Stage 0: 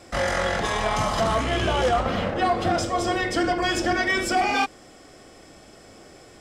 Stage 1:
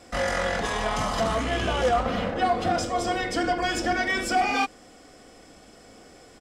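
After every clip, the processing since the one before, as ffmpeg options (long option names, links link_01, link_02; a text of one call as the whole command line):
ffmpeg -i in.wav -af "aecho=1:1:4.1:0.32,volume=-2.5dB" out.wav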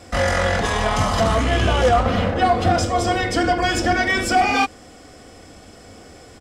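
ffmpeg -i in.wav -af "equalizer=frequency=86:width=1.5:gain=10,volume=6dB" out.wav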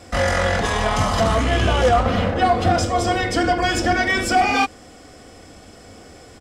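ffmpeg -i in.wav -af anull out.wav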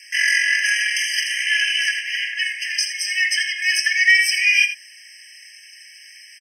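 ffmpeg -i in.wav -af "aecho=1:1:84:0.266,afftfilt=real='re*eq(mod(floor(b*sr/1024/1600),2),1)':imag='im*eq(mod(floor(b*sr/1024/1600),2),1)':win_size=1024:overlap=0.75,volume=8.5dB" out.wav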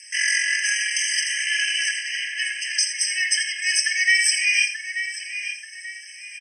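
ffmpeg -i in.wav -filter_complex "[0:a]lowpass=frequency=7700:width_type=q:width=9.3,asplit=2[link_01][link_02];[link_02]adelay=884,lowpass=frequency=2700:poles=1,volume=-7.5dB,asplit=2[link_03][link_04];[link_04]adelay=884,lowpass=frequency=2700:poles=1,volume=0.45,asplit=2[link_05][link_06];[link_06]adelay=884,lowpass=frequency=2700:poles=1,volume=0.45,asplit=2[link_07][link_08];[link_08]adelay=884,lowpass=frequency=2700:poles=1,volume=0.45,asplit=2[link_09][link_10];[link_10]adelay=884,lowpass=frequency=2700:poles=1,volume=0.45[link_11];[link_01][link_03][link_05][link_07][link_09][link_11]amix=inputs=6:normalize=0,volume=-5dB" out.wav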